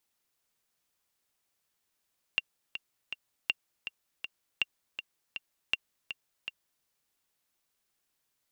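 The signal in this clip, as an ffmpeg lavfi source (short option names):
-f lavfi -i "aevalsrc='pow(10,(-13-10*gte(mod(t,3*60/161),60/161))/20)*sin(2*PI*2770*mod(t,60/161))*exp(-6.91*mod(t,60/161)/0.03)':d=4.47:s=44100"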